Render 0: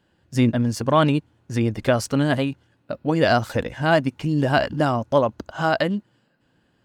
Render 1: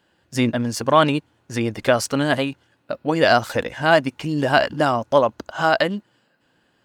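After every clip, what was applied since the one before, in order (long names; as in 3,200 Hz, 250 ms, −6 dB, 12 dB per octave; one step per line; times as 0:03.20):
low-shelf EQ 270 Hz −11 dB
level +4.5 dB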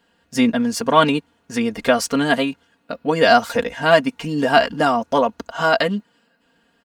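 comb filter 4.3 ms, depth 75%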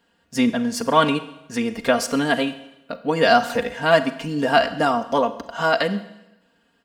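four-comb reverb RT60 0.91 s, combs from 33 ms, DRR 12.5 dB
level −2.5 dB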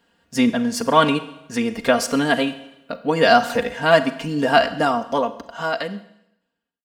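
fade-out on the ending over 2.26 s
level +1.5 dB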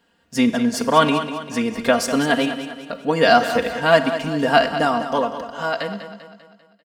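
repeating echo 197 ms, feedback 49%, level −11 dB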